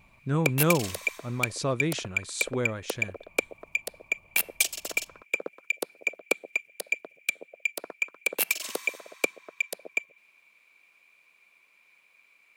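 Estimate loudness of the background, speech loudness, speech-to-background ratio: −30.0 LKFS, −30.0 LKFS, 0.0 dB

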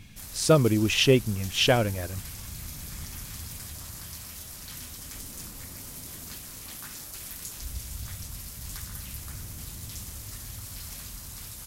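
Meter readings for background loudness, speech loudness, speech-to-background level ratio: −38.5 LKFS, −23.0 LKFS, 15.5 dB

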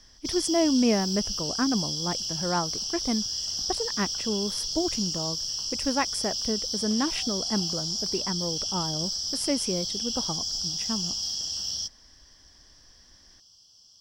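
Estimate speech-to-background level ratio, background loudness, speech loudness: −2.0 dB, −28.5 LKFS, −30.5 LKFS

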